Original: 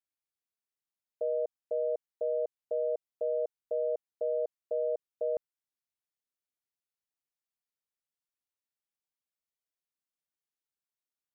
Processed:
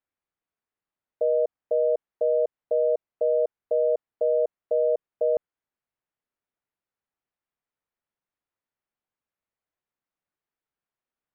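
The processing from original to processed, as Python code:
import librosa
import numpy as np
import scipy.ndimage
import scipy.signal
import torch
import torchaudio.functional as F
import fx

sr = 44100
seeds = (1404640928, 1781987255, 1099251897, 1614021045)

y = scipy.signal.sosfilt(scipy.signal.butter(2, 1900.0, 'lowpass', fs=sr, output='sos'), x)
y = y * librosa.db_to_amplitude(8.5)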